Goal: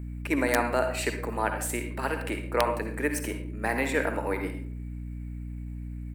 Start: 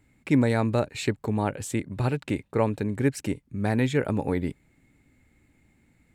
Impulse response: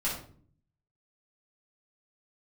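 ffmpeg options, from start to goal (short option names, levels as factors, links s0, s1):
-filter_complex "[0:a]firequalizer=gain_entry='entry(330,0);entry(1600,4);entry(3200,-10)':delay=0.05:min_phase=1,asplit=2[s0][s1];[1:a]atrim=start_sample=2205,adelay=53[s2];[s1][s2]afir=irnorm=-1:irlink=0,volume=0.251[s3];[s0][s3]amix=inputs=2:normalize=0,asetrate=46722,aresample=44100,atempo=0.943874,highpass=f=240:w=0.5412,highpass=f=240:w=1.3066,aemphasis=mode=production:type=riaa,aeval=exprs='(mod(3.35*val(0)+1,2)-1)/3.35':c=same,aeval=exprs='val(0)+0.0178*(sin(2*PI*60*n/s)+sin(2*PI*2*60*n/s)/2+sin(2*PI*3*60*n/s)/3+sin(2*PI*4*60*n/s)/4+sin(2*PI*5*60*n/s)/5)':c=same"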